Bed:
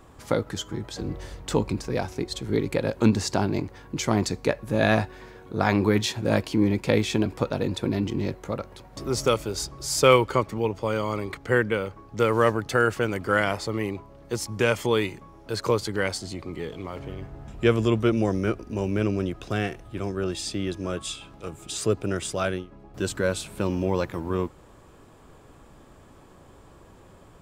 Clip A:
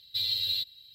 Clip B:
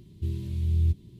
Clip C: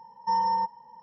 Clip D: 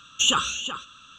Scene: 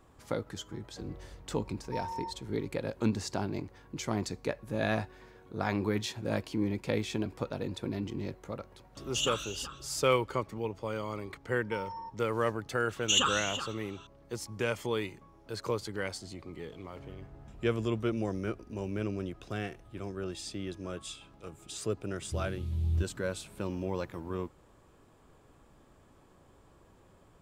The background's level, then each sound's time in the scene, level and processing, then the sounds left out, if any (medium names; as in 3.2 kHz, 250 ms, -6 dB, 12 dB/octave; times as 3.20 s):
bed -9.5 dB
1.65 s: add C -13.5 dB
8.95 s: add D -12 dB
11.44 s: add C -16.5 dB
12.89 s: add D -5.5 dB
22.10 s: add B -6 dB
not used: A